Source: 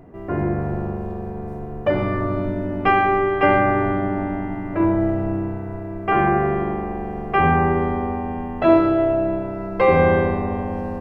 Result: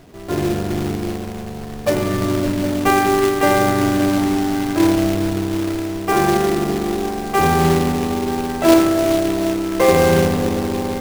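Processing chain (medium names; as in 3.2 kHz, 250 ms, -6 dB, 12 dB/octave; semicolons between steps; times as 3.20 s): dynamic bell 370 Hz, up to +5 dB, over -29 dBFS, Q 1.4; repeats whose band climbs or falls 189 ms, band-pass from 150 Hz, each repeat 0.7 oct, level -1.5 dB; companded quantiser 4-bit; trim -1 dB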